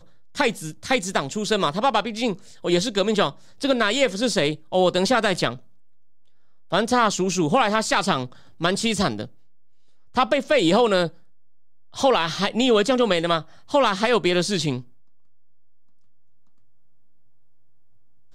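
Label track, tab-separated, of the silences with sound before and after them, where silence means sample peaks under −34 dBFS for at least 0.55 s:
5.560000	6.720000	silence
9.270000	10.150000	silence
11.090000	11.940000	silence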